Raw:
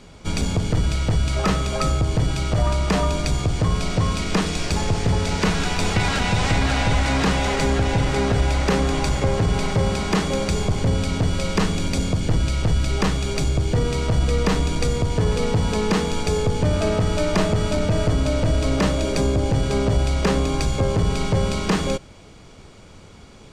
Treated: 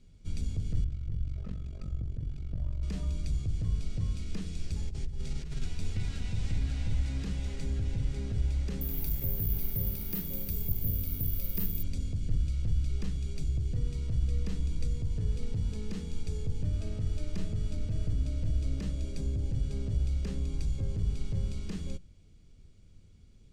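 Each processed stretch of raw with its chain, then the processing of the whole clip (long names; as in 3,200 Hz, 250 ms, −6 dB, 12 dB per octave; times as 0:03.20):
0:00.84–0:02.83: low-pass filter 1,600 Hz 6 dB per octave + amplitude modulation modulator 46 Hz, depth 90%
0:04.88–0:05.66: compressor whose output falls as the input rises −22 dBFS, ratio −0.5 + frequency shifter −31 Hz
0:08.81–0:11.83: parametric band 71 Hz −5.5 dB 0.38 octaves + bad sample-rate conversion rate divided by 3×, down filtered, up zero stuff
whole clip: guitar amp tone stack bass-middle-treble 10-0-1; mains-hum notches 60/120/180 Hz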